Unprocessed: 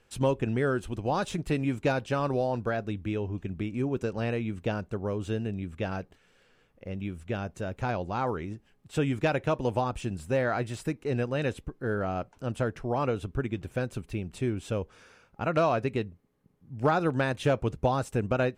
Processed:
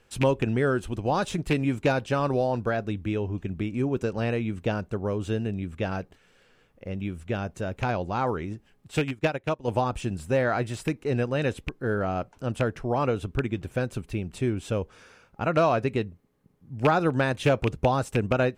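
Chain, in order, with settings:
loose part that buzzes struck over −27 dBFS, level −19 dBFS
0:08.99–0:09.68: expander for the loud parts 2.5 to 1, over −34 dBFS
level +3 dB

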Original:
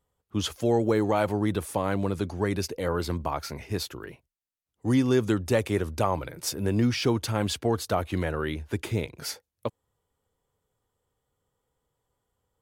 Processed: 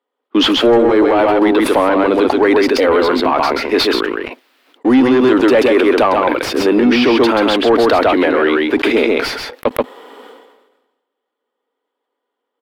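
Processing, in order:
Chebyshev high-pass filter 250 Hz, order 5
high-shelf EQ 2,700 Hz +10.5 dB
leveller curve on the samples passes 3
high-frequency loss of the air 410 metres
single-tap delay 133 ms −3.5 dB
boost into a limiter +14.5 dB
level that may fall only so fast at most 51 dB per second
level −4 dB

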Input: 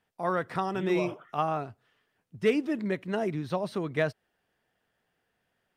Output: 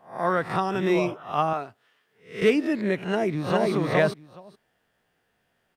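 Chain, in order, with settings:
peak hold with a rise ahead of every peak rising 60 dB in 0.39 s
0:01.53–0:02.42: high-pass filter 460 Hz 6 dB per octave
0:03.03–0:03.71: delay throw 420 ms, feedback 10%, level −0.5 dB
level +4 dB

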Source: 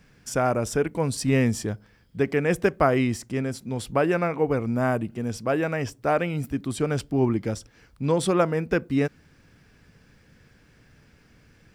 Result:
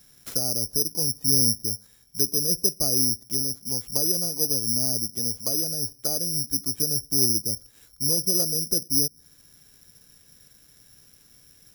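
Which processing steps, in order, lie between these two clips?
treble cut that deepens with the level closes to 420 Hz, closed at −22.5 dBFS
bad sample-rate conversion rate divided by 8×, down none, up zero stuff
level −7.5 dB

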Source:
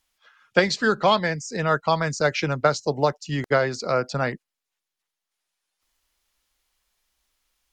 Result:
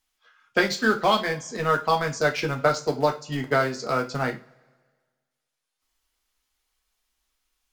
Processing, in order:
in parallel at −11 dB: centre clipping without the shift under −20.5 dBFS
on the sum: coupled-rooms reverb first 0.28 s, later 1.6 s, from −26 dB, DRR 2 dB
level −5 dB

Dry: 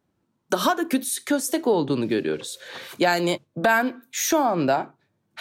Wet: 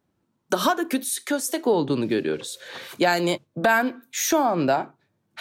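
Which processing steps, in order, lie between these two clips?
0:00.81–0:01.64: high-pass filter 190 Hz → 430 Hz 6 dB per octave

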